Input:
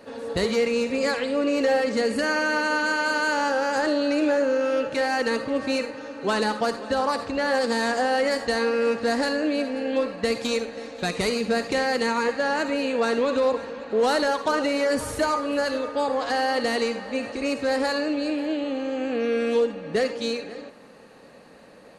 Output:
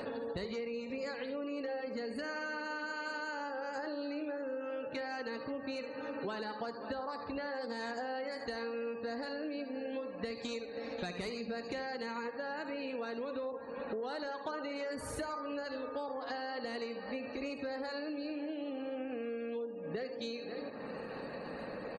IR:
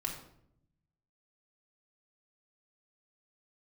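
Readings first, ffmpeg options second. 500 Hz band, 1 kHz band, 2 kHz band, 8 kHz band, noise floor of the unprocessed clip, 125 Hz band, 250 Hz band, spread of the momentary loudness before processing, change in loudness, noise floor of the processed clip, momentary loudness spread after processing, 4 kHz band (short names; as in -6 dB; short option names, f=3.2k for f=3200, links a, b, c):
-15.5 dB, -15.5 dB, -15.5 dB, -19.5 dB, -48 dBFS, -11.5 dB, -14.5 dB, 5 LU, -15.5 dB, -45 dBFS, 2 LU, -16.0 dB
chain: -af "acompressor=mode=upward:threshold=-30dB:ratio=2.5,aecho=1:1:73|146|219|292:0.266|0.112|0.0469|0.0197,acompressor=threshold=-34dB:ratio=10,afftdn=nr=33:nf=-51,volume=-2.5dB"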